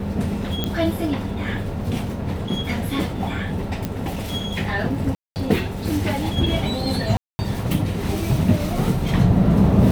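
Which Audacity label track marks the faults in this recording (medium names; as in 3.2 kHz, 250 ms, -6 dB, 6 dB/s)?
0.640000	0.640000	pop -9 dBFS
3.850000	3.850000	pop -11 dBFS
5.150000	5.360000	dropout 209 ms
7.170000	7.390000	dropout 220 ms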